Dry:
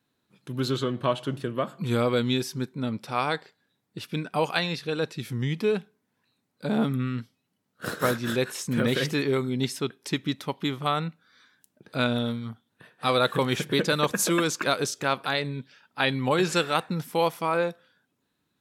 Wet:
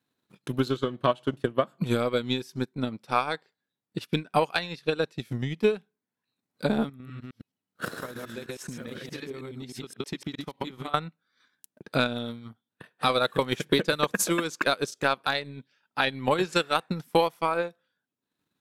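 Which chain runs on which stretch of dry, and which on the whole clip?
6.89–10.94 s: chunks repeated in reverse 105 ms, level -1 dB + compression 8:1, threshold -31 dBFS
whole clip: bass shelf 67 Hz -10.5 dB; transient shaper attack +12 dB, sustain -9 dB; loudness maximiser +4 dB; trim -8.5 dB

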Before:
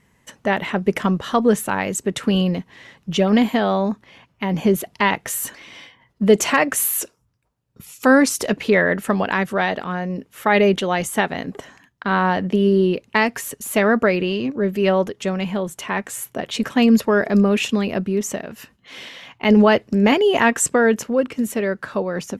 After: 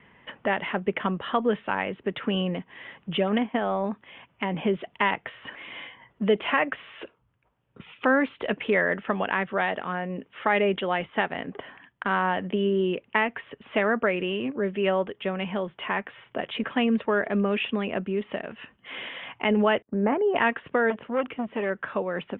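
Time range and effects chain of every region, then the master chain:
3.38–3.84 s: distance through air 380 m + transient shaper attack +3 dB, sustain -8 dB
19.82–20.36 s: low-pass 1.5 kHz 24 dB/octave + expander -42 dBFS
20.90–21.70 s: de-esser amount 95% + transformer saturation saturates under 780 Hz
whole clip: steep low-pass 3.4 kHz 96 dB/octave; bass shelf 280 Hz -8.5 dB; three bands compressed up and down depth 40%; trim -4.5 dB

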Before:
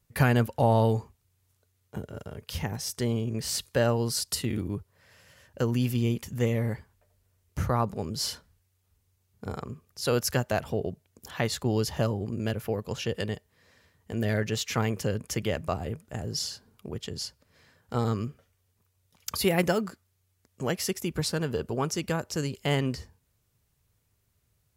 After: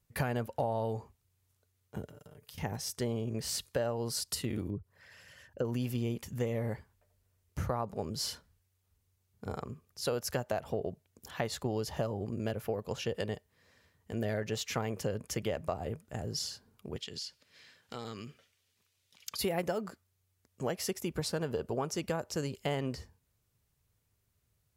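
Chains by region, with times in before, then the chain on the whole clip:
2.08–2.58 s: treble shelf 8.6 kHz +11 dB + compression 12:1, threshold -45 dBFS + comb 6.7 ms, depth 46%
4.70–5.65 s: resonances exaggerated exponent 1.5 + tape noise reduction on one side only encoder only
16.96–19.39 s: frequency weighting D + compression 4:1, threshold -34 dBFS
whole clip: dynamic bell 650 Hz, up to +7 dB, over -40 dBFS, Q 0.98; compression 6:1, threshold -25 dBFS; trim -4.5 dB

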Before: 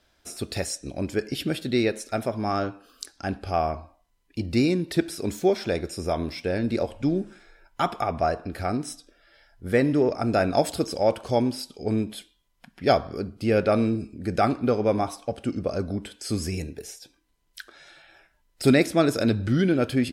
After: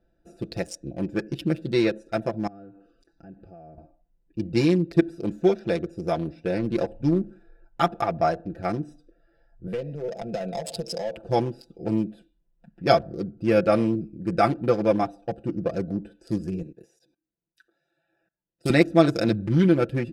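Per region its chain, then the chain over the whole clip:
2.47–3.78 s: low-pass 9 kHz + compression 3:1, threshold -45 dBFS
9.67–11.17 s: overdrive pedal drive 14 dB, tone 5.2 kHz, clips at -7 dBFS + compression 16:1, threshold -23 dBFS + static phaser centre 310 Hz, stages 6
16.62–18.70 s: high-pass 120 Hz + treble shelf 2.5 kHz +9 dB + level held to a coarse grid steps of 21 dB
whole clip: local Wiener filter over 41 samples; comb 5.9 ms, depth 75%

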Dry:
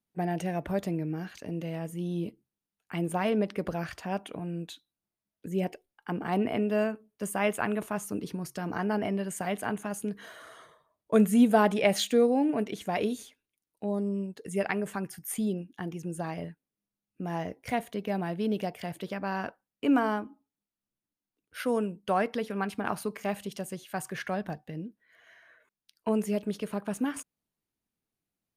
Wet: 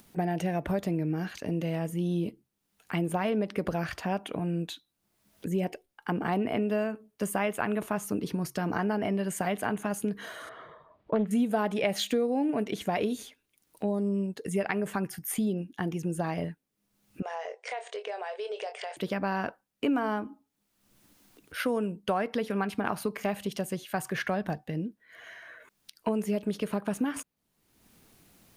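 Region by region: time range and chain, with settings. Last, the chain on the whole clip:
10.49–11.31 s: distance through air 390 m + loudspeaker Doppler distortion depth 0.29 ms
17.22–18.97 s: brick-wall FIR band-pass 390–9100 Hz + doubling 24 ms -9 dB + compression 4:1, threshold -38 dBFS
whole clip: compression 4:1, threshold -31 dBFS; dynamic bell 8.2 kHz, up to -4 dB, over -55 dBFS, Q 0.91; upward compressor, threshold -46 dBFS; trim +5.5 dB

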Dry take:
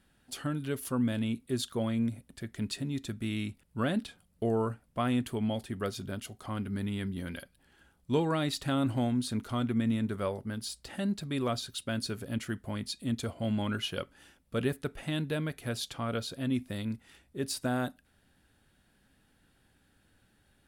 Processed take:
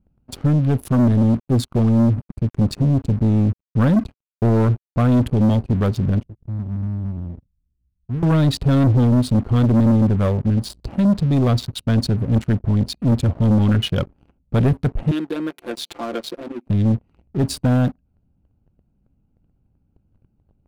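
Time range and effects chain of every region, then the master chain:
0.92–5.06 s: peaking EQ 3.1 kHz -8 dB 0.51 oct + small samples zeroed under -52.5 dBFS
6.23–8.23 s: median filter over 41 samples + amplifier tone stack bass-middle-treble 10-0-1
15.11–16.67 s: compression 2:1, threshold -38 dBFS + steep high-pass 270 Hz + comb 5.8 ms, depth 97%
whole clip: local Wiener filter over 25 samples; tone controls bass +13 dB, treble -5 dB; waveshaping leveller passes 3; trim +1 dB

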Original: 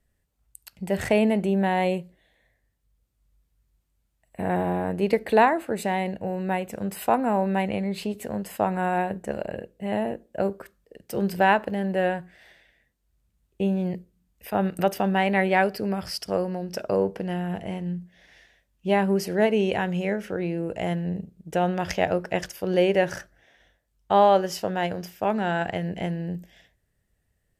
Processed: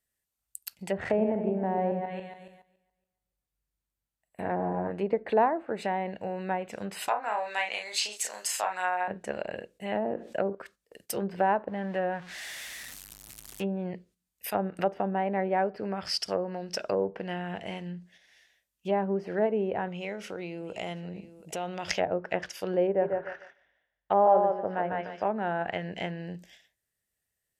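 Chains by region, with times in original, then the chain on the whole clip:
0.93–4.91 s: backward echo that repeats 141 ms, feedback 49%, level -6 dB + treble shelf 2.3 kHz -10 dB
7.08–9.08 s: high-pass 890 Hz + peaking EQ 6.2 kHz +11 dB 1 oct + doubling 33 ms -3.5 dB
9.95–10.55 s: high-pass 90 Hz + level flattener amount 50%
11.68–13.64 s: jump at every zero crossing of -39 dBFS + peaking EQ 450 Hz -5 dB 0.6 oct
19.88–21.91 s: peaking EQ 1.7 kHz -10.5 dB 0.26 oct + delay 727 ms -18 dB + compression 2.5:1, threshold -29 dBFS
22.87–25.27 s: low-pass 1.8 kHz + thinning echo 147 ms, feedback 27%, high-pass 300 Hz, level -3 dB
whole clip: low-pass that closes with the level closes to 800 Hz, closed at -20 dBFS; gate -51 dBFS, range -9 dB; tilt EQ +3 dB/octave; trim -1 dB

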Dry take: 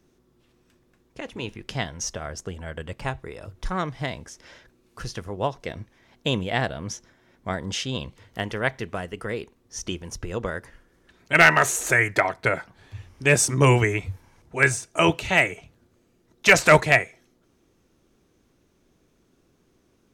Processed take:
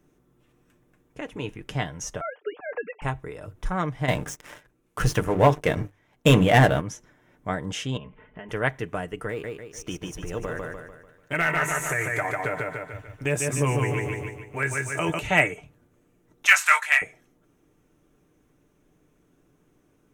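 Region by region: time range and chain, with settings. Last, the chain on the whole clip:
2.21–3.02 s: formants replaced by sine waves + three bands compressed up and down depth 70%
4.08–6.81 s: hum notches 50/100/150/200/250/300/350/400/450 Hz + waveshaping leveller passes 3
7.97–8.49 s: steep low-pass 2.9 kHz + comb 4.7 ms, depth 79% + compression 4:1, threshold -38 dBFS
9.29–15.19 s: companding laws mixed up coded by A + feedback delay 147 ms, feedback 44%, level -4 dB + compression 2:1, threshold -27 dBFS
16.46–17.02 s: high-pass 1.2 kHz 24 dB/octave + doubling 22 ms -5 dB
whole clip: peaking EQ 4.5 kHz -11.5 dB 0.8 oct; comb 6.7 ms, depth 41%

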